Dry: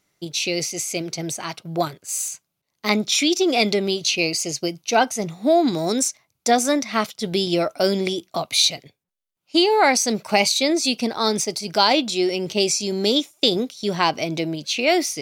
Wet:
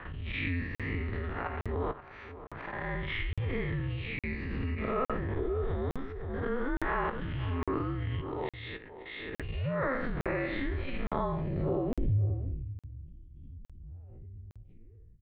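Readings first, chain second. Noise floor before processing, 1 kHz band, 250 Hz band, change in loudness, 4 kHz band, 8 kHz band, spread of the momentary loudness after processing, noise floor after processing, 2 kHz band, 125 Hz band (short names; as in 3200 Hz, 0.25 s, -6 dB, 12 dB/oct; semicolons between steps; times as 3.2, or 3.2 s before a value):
-79 dBFS, -15.0 dB, -14.0 dB, -13.5 dB, -27.5 dB, under -40 dB, 17 LU, -52 dBFS, -11.5 dB, +1.0 dB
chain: time blur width 0.157 s; level quantiser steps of 17 dB; auto swell 0.136 s; low-pass sweep 1700 Hz -> 110 Hz, 11.1–12.93; doubler 17 ms -10 dB; outdoor echo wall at 91 m, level -14 dB; mistuned SSB -260 Hz 200–3600 Hz; crackling interface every 0.86 s, samples 2048, zero, from 0.75; backwards sustainer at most 23 dB/s; gain +1.5 dB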